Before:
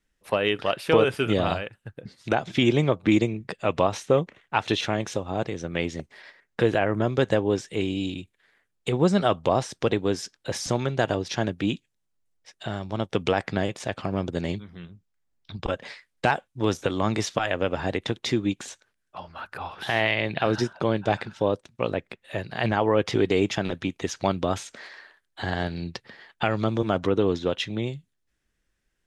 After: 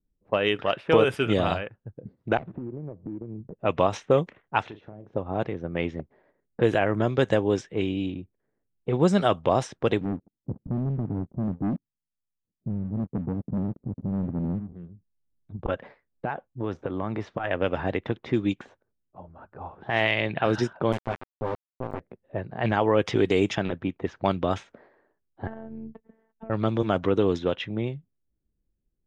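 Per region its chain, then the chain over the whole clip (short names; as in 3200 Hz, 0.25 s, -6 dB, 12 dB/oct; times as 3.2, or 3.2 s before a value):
2.37–3.59 median filter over 41 samples + air absorption 300 m + compressor 12:1, threshold -31 dBFS
4.62–5.13 LPF 9200 Hz + compressor 4:1, threshold -39 dBFS + doubler 39 ms -9 dB
10.01–14.73 ladder low-pass 300 Hz, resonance 35% + sample leveller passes 3
15.77–17.44 compressor 3:1, threshold -25 dBFS + mismatched tape noise reduction encoder only
20.92–22 minimum comb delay 7.8 ms + sample gate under -25.5 dBFS + compressor 2.5:1, threshold -25 dBFS
25.47–26.5 LPF 3200 Hz 24 dB/oct + compressor 8:1, threshold -30 dBFS + robotiser 223 Hz
whole clip: low-pass opened by the level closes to 330 Hz, open at -17.5 dBFS; dynamic EQ 4400 Hz, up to -6 dB, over -55 dBFS, Q 4.6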